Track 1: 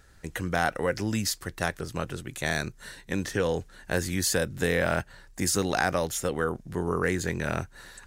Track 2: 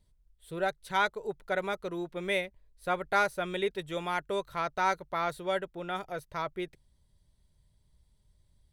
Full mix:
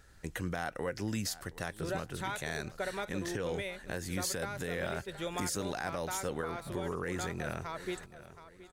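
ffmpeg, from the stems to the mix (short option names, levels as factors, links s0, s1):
-filter_complex "[0:a]volume=0.708,asplit=2[s0][s1];[s1]volume=0.0794[s2];[1:a]equalizer=f=10000:w=0.35:g=3.5,acompressor=threshold=0.0224:ratio=6,adelay=1300,volume=1,asplit=2[s3][s4];[s4]volume=0.141[s5];[s2][s5]amix=inputs=2:normalize=0,aecho=0:1:722|1444|2166|2888:1|0.31|0.0961|0.0298[s6];[s0][s3][s6]amix=inputs=3:normalize=0,alimiter=level_in=1.06:limit=0.0631:level=0:latency=1:release=246,volume=0.944"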